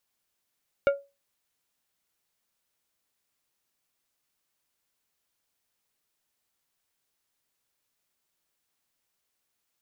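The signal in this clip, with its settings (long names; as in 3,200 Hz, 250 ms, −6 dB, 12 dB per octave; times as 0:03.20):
struck glass plate, lowest mode 560 Hz, decay 0.26 s, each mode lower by 7.5 dB, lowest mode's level −15 dB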